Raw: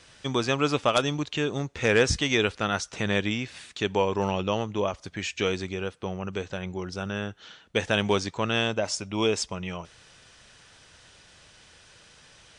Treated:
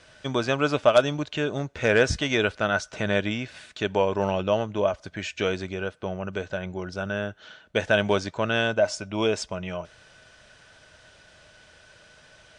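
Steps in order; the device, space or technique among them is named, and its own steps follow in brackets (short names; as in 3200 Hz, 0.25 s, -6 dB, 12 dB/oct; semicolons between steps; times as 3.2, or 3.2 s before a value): inside a helmet (high shelf 5800 Hz -7 dB; small resonant body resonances 620/1500 Hz, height 11 dB, ringing for 45 ms)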